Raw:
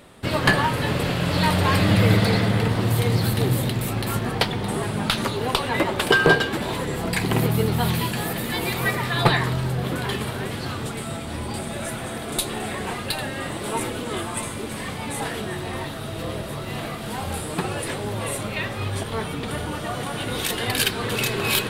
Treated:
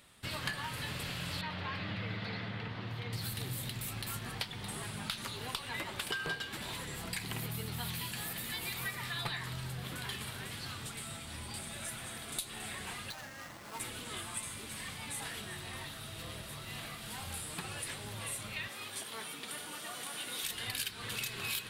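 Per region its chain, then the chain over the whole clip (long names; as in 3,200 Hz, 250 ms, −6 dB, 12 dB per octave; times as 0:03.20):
0:01.41–0:03.13: high-pass filter 150 Hz 6 dB per octave + high-frequency loss of the air 270 metres
0:13.10–0:13.80: running median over 15 samples + low-shelf EQ 250 Hz −8 dB + notch filter 400 Hz, Q 7.1
0:18.68–0:20.44: Chebyshev high-pass filter 290 Hz + high-shelf EQ 7,100 Hz +6 dB
whole clip: guitar amp tone stack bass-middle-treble 5-5-5; downward compressor 3 to 1, threshold −36 dBFS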